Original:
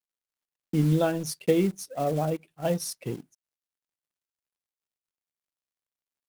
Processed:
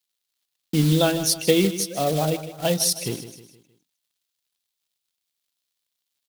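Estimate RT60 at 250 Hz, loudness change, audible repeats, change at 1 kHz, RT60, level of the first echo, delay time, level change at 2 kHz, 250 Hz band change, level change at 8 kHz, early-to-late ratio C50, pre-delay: no reverb audible, +5.5 dB, 4, +4.5 dB, no reverb audible, −13.0 dB, 156 ms, +8.5 dB, +4.0 dB, +13.0 dB, no reverb audible, no reverb audible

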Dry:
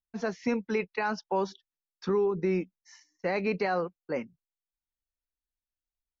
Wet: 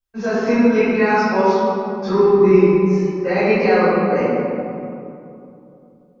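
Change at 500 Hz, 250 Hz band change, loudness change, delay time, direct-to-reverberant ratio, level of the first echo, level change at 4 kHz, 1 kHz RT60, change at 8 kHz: +16.0 dB, +16.5 dB, +14.5 dB, no echo audible, −15.5 dB, no echo audible, +11.5 dB, 2.7 s, can't be measured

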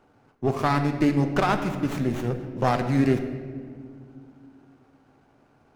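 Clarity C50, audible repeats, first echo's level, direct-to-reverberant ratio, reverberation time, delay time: 8.5 dB, no echo audible, no echo audible, 6.5 dB, 2.1 s, no echo audible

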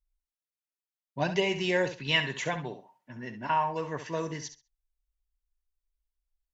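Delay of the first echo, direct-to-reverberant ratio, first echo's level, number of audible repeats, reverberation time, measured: 66 ms, no reverb audible, −10.5 dB, 2, no reverb audible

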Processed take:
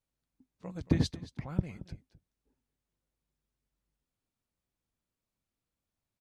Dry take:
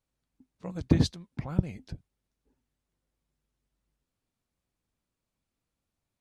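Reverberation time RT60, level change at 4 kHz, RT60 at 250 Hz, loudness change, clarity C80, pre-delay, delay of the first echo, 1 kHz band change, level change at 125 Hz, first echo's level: no reverb audible, −4.0 dB, no reverb audible, −4.5 dB, no reverb audible, no reverb audible, 225 ms, −4.0 dB, −4.5 dB, −17.0 dB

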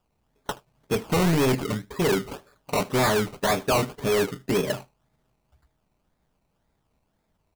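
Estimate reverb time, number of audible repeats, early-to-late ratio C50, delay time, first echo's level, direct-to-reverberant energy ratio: no reverb audible, 1, no reverb audible, 77 ms, −23.0 dB, no reverb audible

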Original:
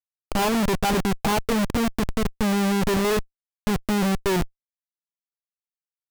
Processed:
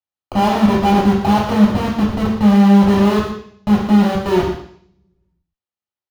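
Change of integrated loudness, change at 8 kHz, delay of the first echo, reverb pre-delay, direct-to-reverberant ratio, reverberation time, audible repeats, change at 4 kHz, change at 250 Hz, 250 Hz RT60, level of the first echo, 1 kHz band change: +9.5 dB, can't be measured, 116 ms, 3 ms, −3.0 dB, 0.60 s, 1, +2.5 dB, +11.5 dB, 0.60 s, −9.5 dB, +8.5 dB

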